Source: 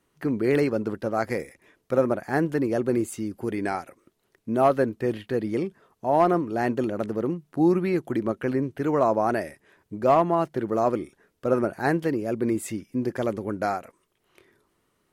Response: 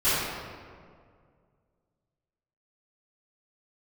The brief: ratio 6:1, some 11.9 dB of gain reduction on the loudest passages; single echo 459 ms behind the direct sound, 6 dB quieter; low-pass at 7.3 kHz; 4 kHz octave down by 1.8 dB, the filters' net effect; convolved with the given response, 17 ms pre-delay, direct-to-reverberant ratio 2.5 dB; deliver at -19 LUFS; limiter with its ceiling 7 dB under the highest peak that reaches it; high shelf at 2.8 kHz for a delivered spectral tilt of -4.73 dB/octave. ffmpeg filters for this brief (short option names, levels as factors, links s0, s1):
-filter_complex "[0:a]lowpass=7300,highshelf=f=2800:g=7.5,equalizer=f=4000:t=o:g=-8.5,acompressor=threshold=0.0398:ratio=6,alimiter=limit=0.0668:level=0:latency=1,aecho=1:1:459:0.501,asplit=2[s0][s1];[1:a]atrim=start_sample=2205,adelay=17[s2];[s1][s2]afir=irnorm=-1:irlink=0,volume=0.119[s3];[s0][s3]amix=inputs=2:normalize=0,volume=4.47"